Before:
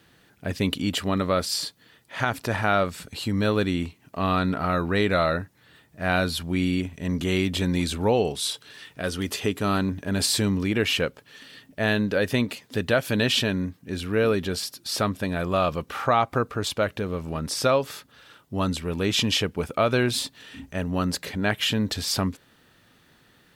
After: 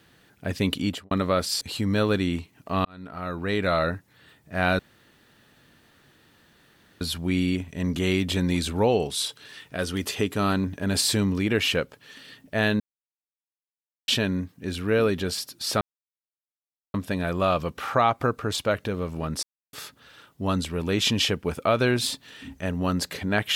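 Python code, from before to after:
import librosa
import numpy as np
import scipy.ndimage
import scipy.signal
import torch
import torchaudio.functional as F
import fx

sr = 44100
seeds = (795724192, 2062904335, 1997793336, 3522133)

y = fx.studio_fade_out(x, sr, start_s=0.85, length_s=0.26)
y = fx.edit(y, sr, fx.cut(start_s=1.61, length_s=1.47),
    fx.fade_in_span(start_s=4.32, length_s=1.03),
    fx.insert_room_tone(at_s=6.26, length_s=2.22),
    fx.silence(start_s=12.05, length_s=1.28),
    fx.insert_silence(at_s=15.06, length_s=1.13),
    fx.silence(start_s=17.55, length_s=0.3), tone=tone)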